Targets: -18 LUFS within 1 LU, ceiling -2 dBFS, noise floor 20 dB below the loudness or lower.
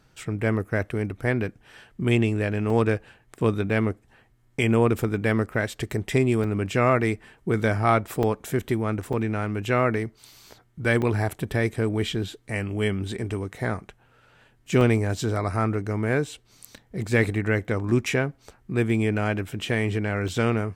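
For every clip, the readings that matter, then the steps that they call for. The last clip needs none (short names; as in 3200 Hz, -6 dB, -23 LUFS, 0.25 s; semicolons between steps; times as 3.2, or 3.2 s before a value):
dropouts 7; longest dropout 2.9 ms; loudness -25.0 LUFS; peak -7.0 dBFS; loudness target -18.0 LUFS
-> interpolate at 2.7/6.44/8.23/9.13/11.02/14.81/20.28, 2.9 ms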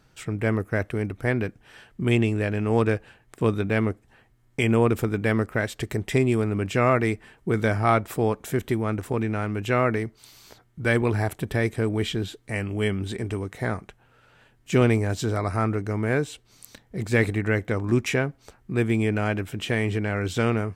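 dropouts 0; loudness -25.0 LUFS; peak -7.0 dBFS; loudness target -18.0 LUFS
-> gain +7 dB; limiter -2 dBFS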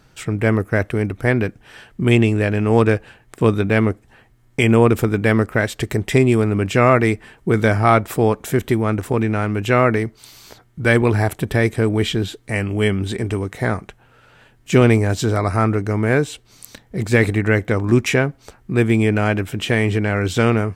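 loudness -18.0 LUFS; peak -2.0 dBFS; noise floor -53 dBFS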